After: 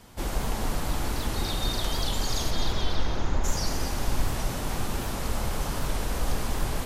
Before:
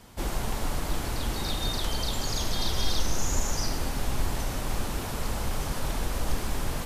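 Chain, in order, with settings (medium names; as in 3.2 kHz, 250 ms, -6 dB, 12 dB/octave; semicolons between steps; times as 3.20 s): 2.50–3.43 s: low-pass 4.4 kHz -> 2.1 kHz 12 dB/octave; echo whose repeats swap between lows and highs 111 ms, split 1.6 kHz, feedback 68%, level -5 dB; warped record 78 rpm, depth 100 cents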